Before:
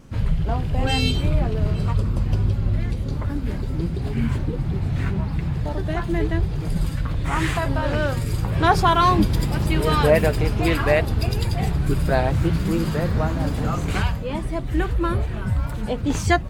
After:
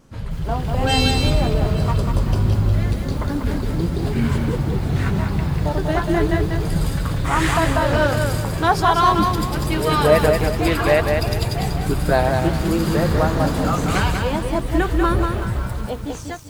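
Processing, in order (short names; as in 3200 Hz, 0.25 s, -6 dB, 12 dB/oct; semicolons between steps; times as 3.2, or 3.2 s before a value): ending faded out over 1.35 s; low shelf 270 Hz -7 dB; AGC gain up to 9 dB; bell 2400 Hz -4 dB 1 oct; lo-fi delay 0.193 s, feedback 35%, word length 7-bit, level -4.5 dB; gain -1.5 dB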